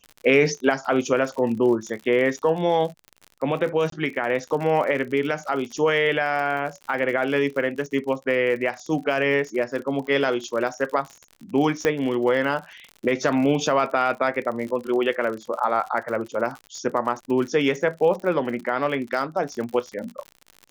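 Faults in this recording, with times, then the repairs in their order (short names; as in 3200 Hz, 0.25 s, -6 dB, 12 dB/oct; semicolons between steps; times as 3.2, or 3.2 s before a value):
crackle 53/s -31 dBFS
3.9–3.92 gap 23 ms
11.85 pop -8 dBFS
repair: de-click; interpolate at 3.9, 23 ms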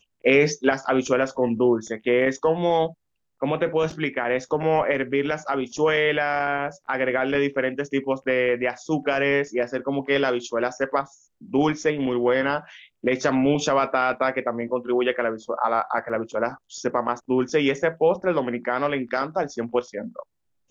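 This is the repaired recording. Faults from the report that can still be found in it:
none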